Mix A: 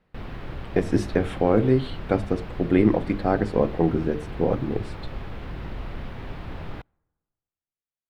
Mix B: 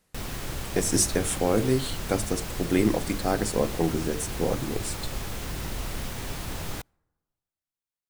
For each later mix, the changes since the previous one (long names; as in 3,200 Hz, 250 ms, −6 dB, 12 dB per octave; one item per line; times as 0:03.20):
speech −5.0 dB
master: remove high-frequency loss of the air 400 metres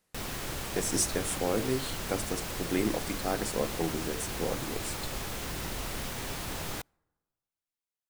speech −5.0 dB
master: add low-shelf EQ 170 Hz −7 dB